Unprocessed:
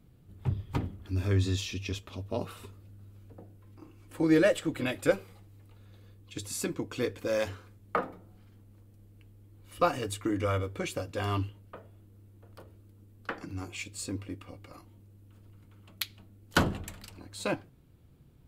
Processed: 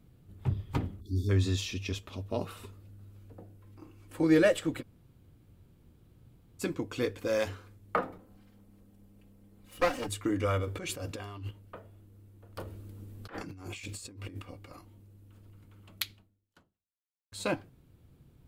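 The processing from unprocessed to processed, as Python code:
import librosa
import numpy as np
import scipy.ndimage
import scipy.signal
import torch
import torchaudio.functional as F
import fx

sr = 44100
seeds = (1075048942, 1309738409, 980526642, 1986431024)

y = fx.spec_erase(x, sr, start_s=1.0, length_s=0.3, low_hz=440.0, high_hz=3400.0)
y = fx.lower_of_two(y, sr, delay_ms=3.8, at=(8.18, 10.09))
y = fx.over_compress(y, sr, threshold_db=-39.0, ratio=-1.0, at=(10.65, 11.51))
y = fx.over_compress(y, sr, threshold_db=-47.0, ratio=-1.0, at=(12.56, 14.4), fade=0.02)
y = fx.edit(y, sr, fx.room_tone_fill(start_s=4.81, length_s=1.8, crossfade_s=0.04),
    fx.fade_out_span(start_s=16.1, length_s=1.22, curve='exp'), tone=tone)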